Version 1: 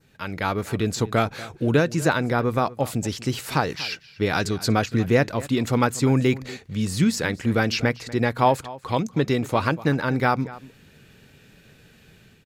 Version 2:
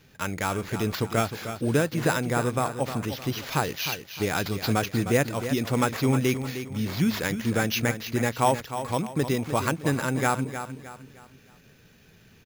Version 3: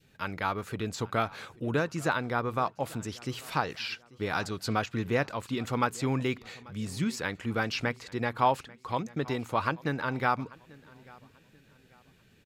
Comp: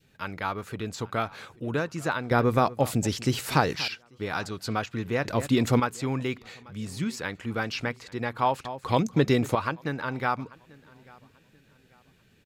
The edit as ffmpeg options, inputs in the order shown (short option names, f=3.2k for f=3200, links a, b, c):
-filter_complex "[0:a]asplit=3[a][b][c];[2:a]asplit=4[d][e][f][g];[d]atrim=end=2.312[h];[a]atrim=start=2.308:end=3.882[i];[e]atrim=start=3.878:end=5.252[j];[b]atrim=start=5.248:end=5.802[k];[f]atrim=start=5.798:end=8.652[l];[c]atrim=start=8.648:end=9.552[m];[g]atrim=start=9.548[n];[h][i]acrossfade=d=0.004:c1=hsin:c2=hsin[o];[o][j]acrossfade=d=0.004:c1=hsin:c2=hsin[p];[p][k]acrossfade=d=0.004:c1=hsin:c2=hsin[q];[q][l]acrossfade=d=0.004:c1=hsin:c2=hsin[r];[r][m]acrossfade=d=0.004:c1=hsin:c2=hsin[s];[s][n]acrossfade=d=0.004:c1=hsin:c2=hsin"